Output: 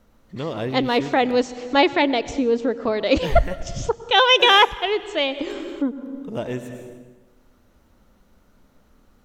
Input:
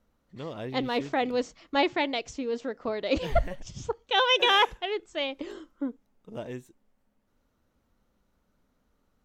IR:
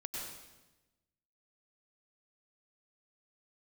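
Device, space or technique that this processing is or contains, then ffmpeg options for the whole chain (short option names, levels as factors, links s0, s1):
ducked reverb: -filter_complex "[0:a]asettb=1/sr,asplit=3[s0][s1][s2];[s0]atrim=end=2.024[s3];[s1]atrim=start=2.02:end=2.77,asetpts=PTS-STARTPTS,afade=t=in:d=0.004:c=qsin,afade=t=out:st=0.746:d=0.004:c=qsin,tiltshelf=f=970:g=4[s4];[s2]atrim=start=2.766[s5];[s3][s4]acrossfade=d=0.004:c1=hsin:c2=qsin[s6];[s6][s5]acrossfade=d=0.004:c1=qsin:c2=hsin,asplit=3[s7][s8][s9];[1:a]atrim=start_sample=2205[s10];[s8][s10]afir=irnorm=-1:irlink=0[s11];[s9]apad=whole_len=407687[s12];[s11][s12]sidechaincompress=threshold=0.00891:ratio=8:attack=5.6:release=350,volume=1.26[s13];[s7][s13]amix=inputs=2:normalize=0,volume=2.37"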